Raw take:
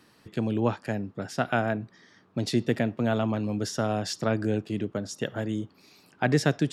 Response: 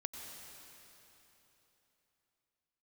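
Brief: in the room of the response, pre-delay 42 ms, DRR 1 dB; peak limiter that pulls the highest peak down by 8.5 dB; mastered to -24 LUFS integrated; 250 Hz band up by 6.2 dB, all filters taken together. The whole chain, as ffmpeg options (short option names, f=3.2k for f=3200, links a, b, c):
-filter_complex "[0:a]equalizer=f=250:t=o:g=7.5,alimiter=limit=-15dB:level=0:latency=1,asplit=2[a][b];[1:a]atrim=start_sample=2205,adelay=42[c];[b][c]afir=irnorm=-1:irlink=0,volume=0dB[d];[a][d]amix=inputs=2:normalize=0,volume=0.5dB"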